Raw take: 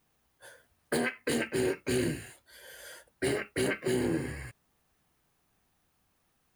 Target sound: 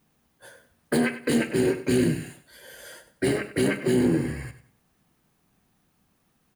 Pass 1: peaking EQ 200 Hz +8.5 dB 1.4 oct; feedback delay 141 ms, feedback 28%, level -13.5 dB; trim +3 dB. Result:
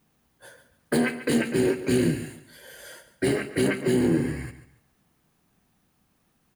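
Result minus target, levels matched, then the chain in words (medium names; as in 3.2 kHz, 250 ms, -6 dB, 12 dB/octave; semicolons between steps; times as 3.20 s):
echo 45 ms late
peaking EQ 200 Hz +8.5 dB 1.4 oct; feedback delay 96 ms, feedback 28%, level -13.5 dB; trim +3 dB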